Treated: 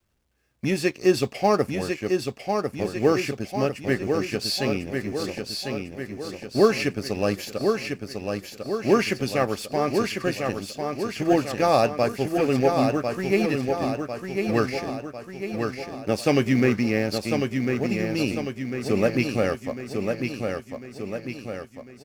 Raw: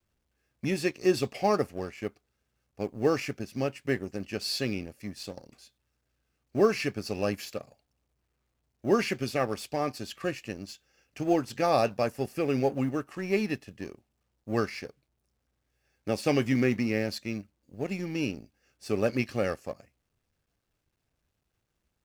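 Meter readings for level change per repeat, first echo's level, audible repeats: -5.5 dB, -5.0 dB, 6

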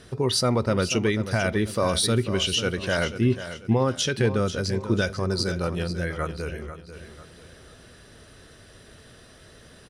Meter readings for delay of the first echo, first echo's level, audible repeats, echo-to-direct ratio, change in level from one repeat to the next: 0.491 s, -11.5 dB, 3, -11.0 dB, -9.0 dB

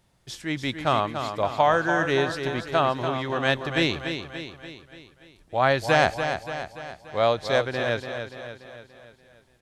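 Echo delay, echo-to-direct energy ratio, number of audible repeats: 0.289 s, -6.5 dB, 5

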